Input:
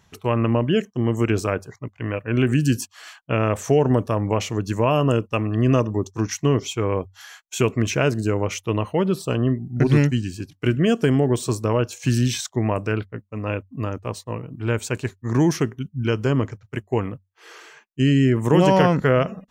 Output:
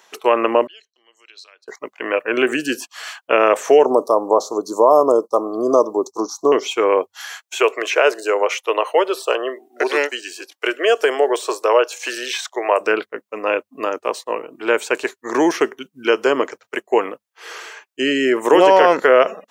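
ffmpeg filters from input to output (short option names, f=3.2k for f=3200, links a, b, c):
-filter_complex "[0:a]asettb=1/sr,asplit=3[a][b][c];[a]atrim=end=0.674[d];[b]atrim=start=0.67:end=1.68,asetpts=PTS-STARTPTS,afade=t=in:d=0.004:c=qsin,afade=t=out:st=1.006:d=0.004:c=qsin,bandpass=f=4.1k:t=q:w=15[e];[c]atrim=start=1.676[f];[d][e]acrossfade=d=0.004:c1=hsin:c2=qsin[g];[g][f]acrossfade=d=0.004:c1=qsin:c2=hsin,asettb=1/sr,asplit=3[h][i][j];[h]atrim=end=3.854[k];[i]atrim=start=3.85:end=6.52,asetpts=PTS-STARTPTS,afade=t=in:d=0.004:c=qsin,afade=t=out:st=2.666:d=0.004:c=qsin,asuperstop=centerf=2200:order=12:qfactor=0.79[l];[j]atrim=start=6.516[m];[k][l]acrossfade=d=0.004:c1=hsin:c2=qsin[n];[n][m]acrossfade=d=0.004:c1=qsin:c2=hsin,asettb=1/sr,asplit=3[o][p][q];[o]atrim=end=7.594[r];[p]atrim=start=7.59:end=12.81,asetpts=PTS-STARTPTS,afade=t=in:d=0.004:c=qsin,afade=t=out:st=5.216:d=0.004:c=qsin,highpass=f=410:w=0.5412,highpass=f=410:w=1.3066[s];[q]atrim=start=12.806[t];[r][s]acrossfade=d=0.004:c1=hsin:c2=qsin[u];[u][t]acrossfade=d=0.004:c1=qsin:c2=hsin,acrossover=split=3200[v][w];[w]acompressor=threshold=-41dB:ratio=4:attack=1:release=60[x];[v][x]amix=inputs=2:normalize=0,highpass=f=390:w=0.5412,highpass=f=390:w=1.3066,alimiter=level_in=11dB:limit=-1dB:release=50:level=0:latency=1,volume=-1dB"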